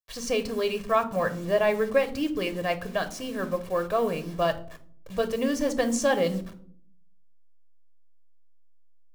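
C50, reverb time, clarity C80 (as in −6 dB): 15.0 dB, 0.55 s, 19.5 dB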